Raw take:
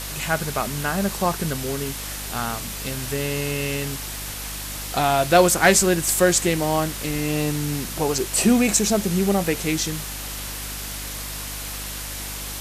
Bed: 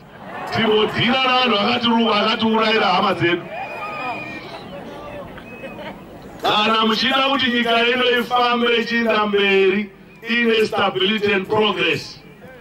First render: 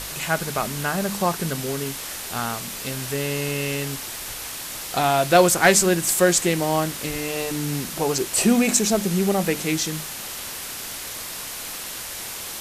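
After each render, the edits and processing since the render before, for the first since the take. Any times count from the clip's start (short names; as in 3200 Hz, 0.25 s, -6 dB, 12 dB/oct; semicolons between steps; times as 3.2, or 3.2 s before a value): de-hum 50 Hz, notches 6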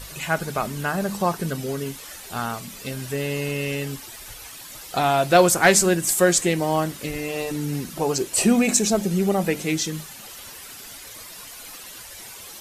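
denoiser 11 dB, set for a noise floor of -34 dBFS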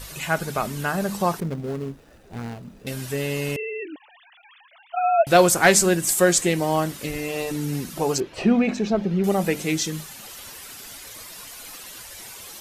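1.4–2.87 median filter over 41 samples; 3.56–5.27 sine-wave speech; 8.2–9.24 air absorption 290 m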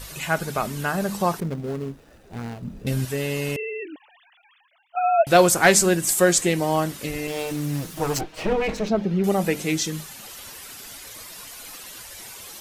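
2.62–3.05 low shelf 270 Hz +11.5 dB; 3.7–4.95 fade out, to -15.5 dB; 7.27–8.89 minimum comb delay 6.4 ms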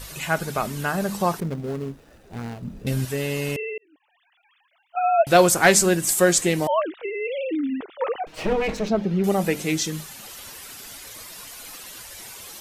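3.78–5.01 fade in; 6.67–8.27 sine-wave speech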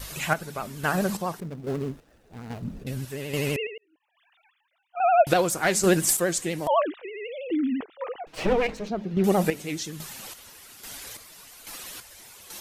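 chopper 1.2 Hz, depth 60%, duty 40%; vibrato 12 Hz 91 cents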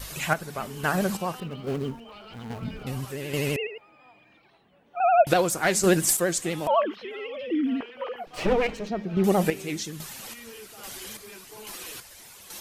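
add bed -29 dB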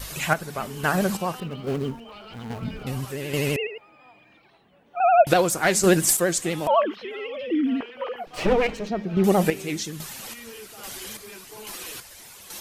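gain +2.5 dB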